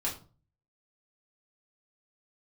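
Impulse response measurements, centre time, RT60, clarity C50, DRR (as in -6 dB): 22 ms, 0.40 s, 10.0 dB, -5.0 dB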